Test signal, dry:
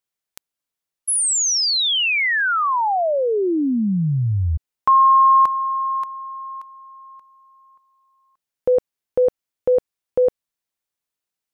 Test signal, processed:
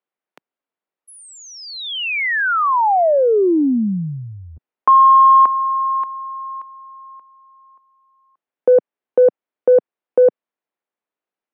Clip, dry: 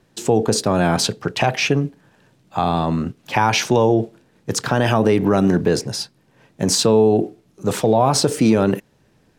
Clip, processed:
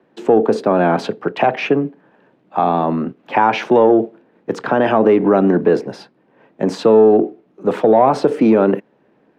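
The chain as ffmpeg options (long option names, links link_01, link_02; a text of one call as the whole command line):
ffmpeg -i in.wav -filter_complex "[0:a]acrossover=split=190 2900:gain=0.0794 1 0.0631[link_01][link_02][link_03];[link_01][link_02][link_03]amix=inputs=3:normalize=0,acrossover=split=150|1000[link_04][link_05][link_06];[link_05]acontrast=28[link_07];[link_04][link_07][link_06]amix=inputs=3:normalize=0,volume=1dB" out.wav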